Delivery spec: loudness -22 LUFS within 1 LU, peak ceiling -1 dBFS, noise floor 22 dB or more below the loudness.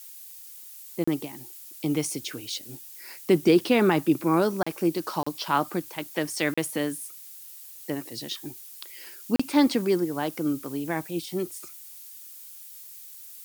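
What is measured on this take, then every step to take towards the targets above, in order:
dropouts 5; longest dropout 35 ms; noise floor -45 dBFS; noise floor target -49 dBFS; loudness -26.5 LUFS; peak level -8.5 dBFS; loudness target -22.0 LUFS
-> interpolate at 1.04/4.63/5.23/6.54/9.36 s, 35 ms; noise reduction 6 dB, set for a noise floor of -45 dBFS; trim +4.5 dB

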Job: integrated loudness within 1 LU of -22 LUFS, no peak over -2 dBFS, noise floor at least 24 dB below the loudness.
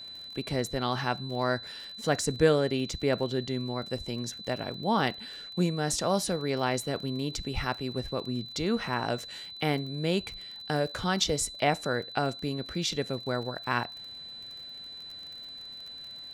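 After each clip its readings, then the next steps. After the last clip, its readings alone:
tick rate 33 per s; steady tone 4 kHz; tone level -41 dBFS; loudness -31.0 LUFS; peak level -9.5 dBFS; loudness target -22.0 LUFS
-> de-click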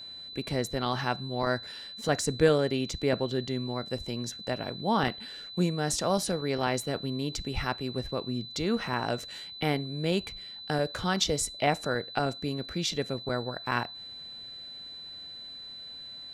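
tick rate 0 per s; steady tone 4 kHz; tone level -41 dBFS
-> band-stop 4 kHz, Q 30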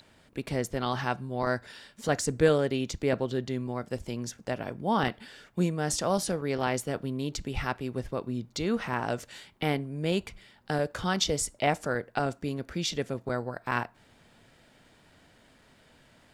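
steady tone not found; loudness -30.5 LUFS; peak level -9.5 dBFS; loudness target -22.0 LUFS
-> trim +8.5 dB; peak limiter -2 dBFS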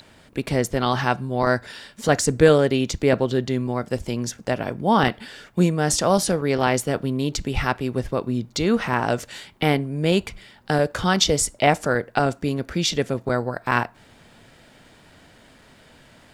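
loudness -22.0 LUFS; peak level -2.0 dBFS; noise floor -52 dBFS

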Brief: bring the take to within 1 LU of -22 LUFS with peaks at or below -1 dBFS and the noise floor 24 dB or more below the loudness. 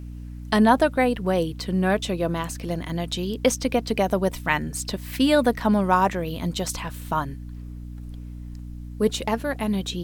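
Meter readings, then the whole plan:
hum 60 Hz; highest harmonic 300 Hz; hum level -34 dBFS; loudness -23.5 LUFS; peak level -4.0 dBFS; loudness target -22.0 LUFS
-> de-hum 60 Hz, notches 5; trim +1.5 dB

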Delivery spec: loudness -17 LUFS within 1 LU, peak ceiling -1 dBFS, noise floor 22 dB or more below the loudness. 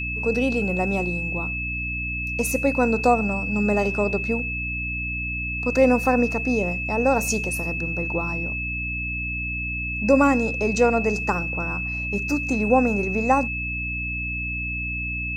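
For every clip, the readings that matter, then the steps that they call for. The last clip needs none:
hum 60 Hz; highest harmonic 300 Hz; hum level -30 dBFS; steady tone 2.6 kHz; tone level -27 dBFS; loudness -23.0 LUFS; peak level -5.0 dBFS; loudness target -17.0 LUFS
-> de-hum 60 Hz, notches 5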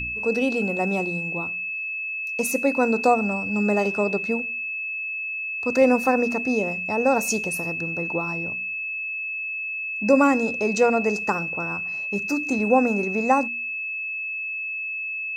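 hum not found; steady tone 2.6 kHz; tone level -27 dBFS
-> band-stop 2.6 kHz, Q 30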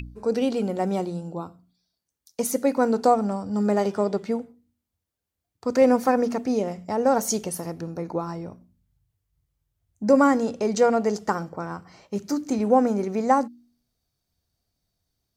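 steady tone not found; loudness -24.0 LUFS; peak level -6.0 dBFS; loudness target -17.0 LUFS
-> trim +7 dB; peak limiter -1 dBFS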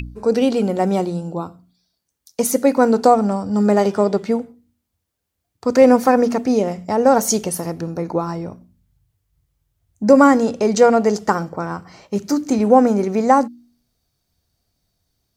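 loudness -17.0 LUFS; peak level -1.0 dBFS; noise floor -77 dBFS

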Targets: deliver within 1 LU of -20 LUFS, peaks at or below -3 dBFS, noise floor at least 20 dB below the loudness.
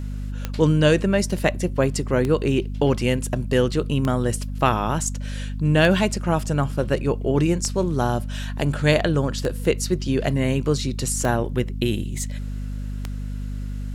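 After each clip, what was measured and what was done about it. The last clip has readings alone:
clicks found 8; hum 50 Hz; highest harmonic 250 Hz; hum level -26 dBFS; loudness -22.5 LUFS; peak level -4.0 dBFS; loudness target -20.0 LUFS
-> de-click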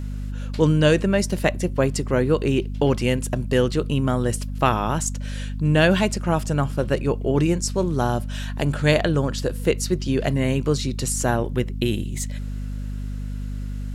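clicks found 0; hum 50 Hz; highest harmonic 250 Hz; hum level -26 dBFS
-> hum notches 50/100/150/200/250 Hz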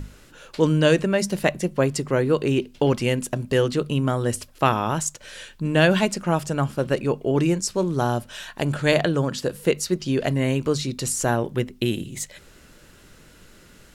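hum not found; loudness -23.0 LUFS; peak level -4.5 dBFS; loudness target -20.0 LUFS
-> trim +3 dB; peak limiter -3 dBFS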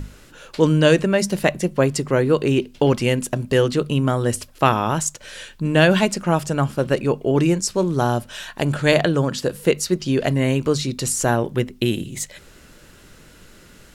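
loudness -20.0 LUFS; peak level -3.0 dBFS; noise floor -48 dBFS

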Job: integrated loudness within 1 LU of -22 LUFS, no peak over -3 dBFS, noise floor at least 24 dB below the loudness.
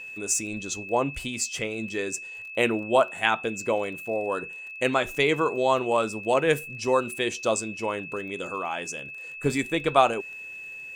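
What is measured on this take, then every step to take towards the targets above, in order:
tick rate 20 per s; steady tone 2.6 kHz; tone level -37 dBFS; loudness -26.5 LUFS; peak level -5.0 dBFS; loudness target -22.0 LUFS
-> de-click; band-stop 2.6 kHz, Q 30; trim +4.5 dB; peak limiter -3 dBFS

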